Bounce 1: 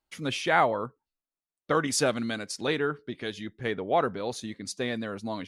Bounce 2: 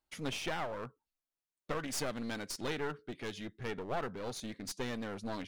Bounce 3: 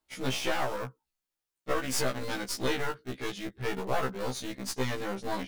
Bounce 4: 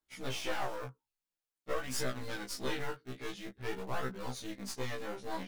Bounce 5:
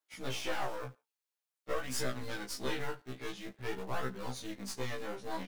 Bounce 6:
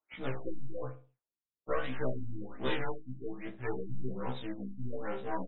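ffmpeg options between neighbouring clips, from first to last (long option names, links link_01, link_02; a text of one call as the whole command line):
ffmpeg -i in.wav -af "alimiter=limit=-20dB:level=0:latency=1:release=468,aeval=exprs='clip(val(0),-1,0.0112)':channel_layout=same,volume=-3dB" out.wav
ffmpeg -i in.wav -filter_complex "[0:a]asplit=2[link_01][link_02];[link_02]acrusher=bits=5:mix=0:aa=0.000001,volume=-8dB[link_03];[link_01][link_03]amix=inputs=2:normalize=0,afftfilt=real='re*1.73*eq(mod(b,3),0)':imag='im*1.73*eq(mod(b,3),0)':win_size=2048:overlap=0.75,volume=6.5dB" out.wav
ffmpeg -i in.wav -af "flanger=delay=16:depth=6.8:speed=0.49,volume=-3.5dB" out.wav
ffmpeg -i in.wav -filter_complex "[0:a]aecho=1:1:71|142:0.0708|0.0248,acrossover=split=330|2500[link_01][link_02][link_03];[link_01]aeval=exprs='val(0)*gte(abs(val(0)),0.00106)':channel_layout=same[link_04];[link_04][link_02][link_03]amix=inputs=3:normalize=0" out.wav
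ffmpeg -i in.wav -filter_complex "[0:a]asplit=2[link_01][link_02];[link_02]adelay=61,lowpass=frequency=890:poles=1,volume=-9dB,asplit=2[link_03][link_04];[link_04]adelay=61,lowpass=frequency=890:poles=1,volume=0.38,asplit=2[link_05][link_06];[link_06]adelay=61,lowpass=frequency=890:poles=1,volume=0.38,asplit=2[link_07][link_08];[link_08]adelay=61,lowpass=frequency=890:poles=1,volume=0.38[link_09];[link_01][link_03][link_05][link_07][link_09]amix=inputs=5:normalize=0,afftfilt=real='re*lt(b*sr/1024,290*pow(4000/290,0.5+0.5*sin(2*PI*1.2*pts/sr)))':imag='im*lt(b*sr/1024,290*pow(4000/290,0.5+0.5*sin(2*PI*1.2*pts/sr)))':win_size=1024:overlap=0.75,volume=3dB" out.wav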